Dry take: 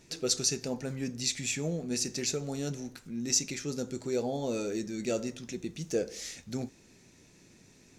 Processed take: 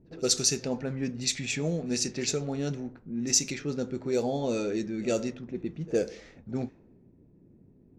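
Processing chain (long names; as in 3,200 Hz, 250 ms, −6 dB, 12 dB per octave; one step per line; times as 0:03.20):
low-pass that shuts in the quiet parts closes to 340 Hz, open at −26 dBFS
echo ahead of the sound 63 ms −22 dB
level +3.5 dB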